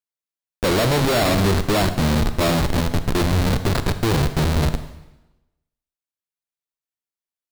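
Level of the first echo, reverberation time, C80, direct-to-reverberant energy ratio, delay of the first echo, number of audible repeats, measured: none, 1.0 s, 13.0 dB, 10.0 dB, none, none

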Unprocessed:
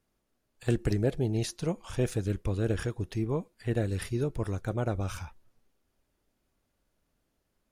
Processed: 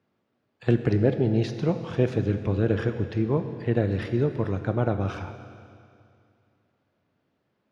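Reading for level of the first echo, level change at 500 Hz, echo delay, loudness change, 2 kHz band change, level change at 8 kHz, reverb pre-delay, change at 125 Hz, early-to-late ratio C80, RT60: none, +6.5 dB, none, +6.0 dB, +5.0 dB, under -10 dB, 23 ms, +5.0 dB, 10.0 dB, 2.4 s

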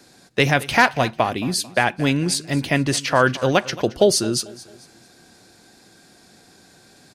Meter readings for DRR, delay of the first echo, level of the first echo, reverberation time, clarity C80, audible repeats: none, 0.222 s, -19.0 dB, none, none, 3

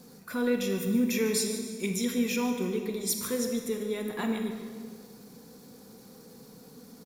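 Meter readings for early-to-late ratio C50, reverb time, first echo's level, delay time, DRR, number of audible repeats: 5.0 dB, 1.8 s, -14.0 dB, 0.148 s, 4.5 dB, 1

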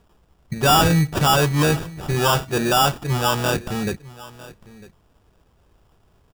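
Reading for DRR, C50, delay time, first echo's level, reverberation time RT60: none, none, 0.952 s, -19.5 dB, none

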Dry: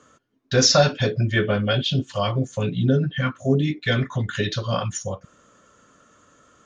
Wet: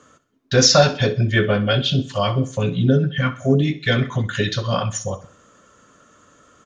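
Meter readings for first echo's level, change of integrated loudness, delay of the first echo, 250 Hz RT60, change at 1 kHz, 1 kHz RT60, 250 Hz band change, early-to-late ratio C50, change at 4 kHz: -16.0 dB, +3.0 dB, 64 ms, none, +3.0 dB, none, +3.0 dB, none, +3.0 dB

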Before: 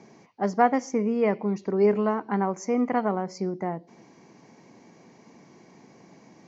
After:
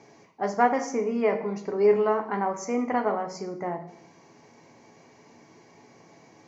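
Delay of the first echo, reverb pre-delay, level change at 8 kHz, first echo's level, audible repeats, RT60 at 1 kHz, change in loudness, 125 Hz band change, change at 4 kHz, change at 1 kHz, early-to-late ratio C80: none, 7 ms, n/a, none, none, 0.60 s, -0.5 dB, -7.0 dB, +1.0 dB, 0.0 dB, 14.0 dB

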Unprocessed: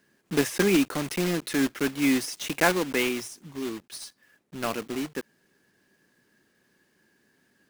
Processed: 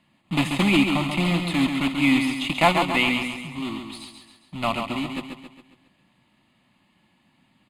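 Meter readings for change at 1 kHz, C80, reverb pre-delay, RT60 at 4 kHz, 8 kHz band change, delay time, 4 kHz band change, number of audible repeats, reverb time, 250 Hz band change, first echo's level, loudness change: +8.5 dB, none, none, none, -5.5 dB, 0.136 s, +7.0 dB, 5, none, +4.0 dB, -6.0 dB, +4.5 dB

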